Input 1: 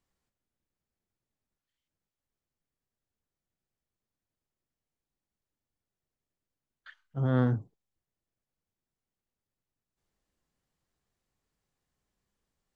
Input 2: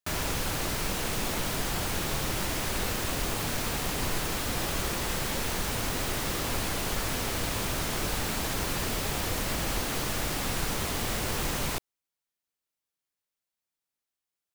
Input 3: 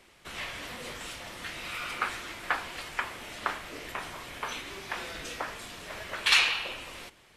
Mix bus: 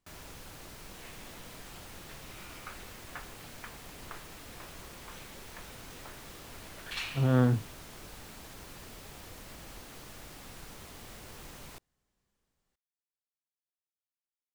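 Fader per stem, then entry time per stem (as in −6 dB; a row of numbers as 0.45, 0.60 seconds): +1.5, −17.5, −16.0 decibels; 0.00, 0.00, 0.65 seconds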